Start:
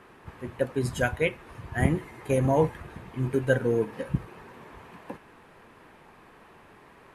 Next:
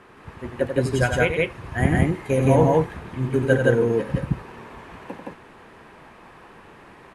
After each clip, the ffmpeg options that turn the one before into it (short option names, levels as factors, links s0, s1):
-filter_complex "[0:a]lowpass=10000,asplit=2[s0][s1];[s1]aecho=0:1:90.38|169.1:0.447|1[s2];[s0][s2]amix=inputs=2:normalize=0,volume=1.41"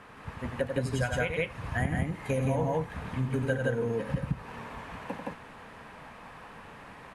-af "equalizer=f=360:w=4.7:g=-13,acompressor=threshold=0.0447:ratio=4"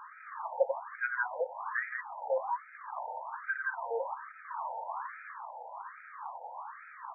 -af "equalizer=f=890:w=1:g=13.5,afftfilt=real='re*between(b*sr/1024,650*pow(1800/650,0.5+0.5*sin(2*PI*1.2*pts/sr))/1.41,650*pow(1800/650,0.5+0.5*sin(2*PI*1.2*pts/sr))*1.41)':imag='im*between(b*sr/1024,650*pow(1800/650,0.5+0.5*sin(2*PI*1.2*pts/sr))/1.41,650*pow(1800/650,0.5+0.5*sin(2*PI*1.2*pts/sr))*1.41)':win_size=1024:overlap=0.75,volume=0.708"